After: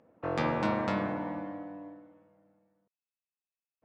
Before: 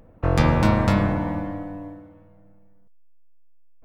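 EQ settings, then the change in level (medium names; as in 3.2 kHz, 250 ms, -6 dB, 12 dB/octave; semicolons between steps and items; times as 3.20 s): high-pass 240 Hz 12 dB/octave; distance through air 78 m; treble shelf 6.3 kHz -4 dB; -7.0 dB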